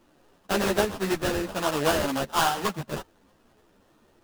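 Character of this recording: aliases and images of a low sample rate 2.2 kHz, jitter 20%; a shimmering, thickened sound

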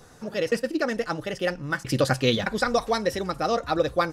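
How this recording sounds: noise floor -49 dBFS; spectral tilt -3.5 dB/octave

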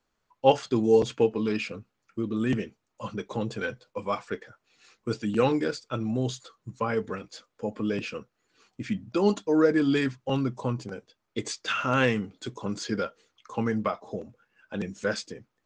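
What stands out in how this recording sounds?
noise floor -79 dBFS; spectral tilt -5.0 dB/octave

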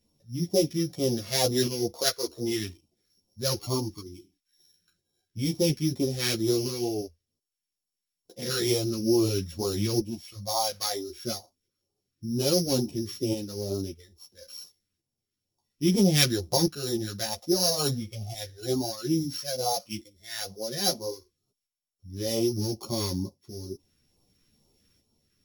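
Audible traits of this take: a buzz of ramps at a fixed pitch in blocks of 8 samples; phasing stages 2, 2.2 Hz, lowest notch 750–1600 Hz; tremolo saw up 0.6 Hz, depth 55%; a shimmering, thickened sound

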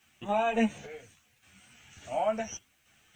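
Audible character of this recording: random-step tremolo, depth 80%; a quantiser's noise floor 12-bit, dither triangular; a shimmering, thickened sound

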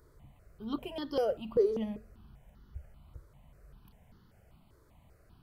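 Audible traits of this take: notches that jump at a steady rate 5.1 Hz 750–2400 Hz

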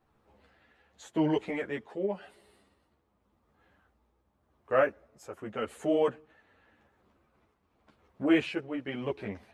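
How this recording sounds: tremolo triangle 0.89 Hz, depth 55%; a shimmering, thickened sound

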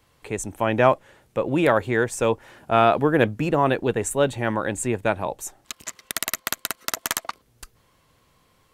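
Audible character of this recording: noise floor -63 dBFS; spectral tilt -4.5 dB/octave

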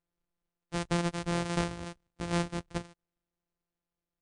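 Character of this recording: a buzz of ramps at a fixed pitch in blocks of 256 samples; tremolo saw down 0.67 Hz, depth 40%; MP3

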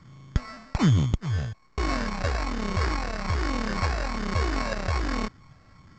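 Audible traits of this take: a buzz of ramps at a fixed pitch in blocks of 8 samples; phasing stages 8, 1.2 Hz, lowest notch 300–1200 Hz; aliases and images of a low sample rate 3.3 kHz, jitter 0%; µ-law

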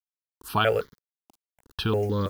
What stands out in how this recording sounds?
a quantiser's noise floor 8-bit, dither none; notches that jump at a steady rate 6.2 Hz 490–2600 Hz

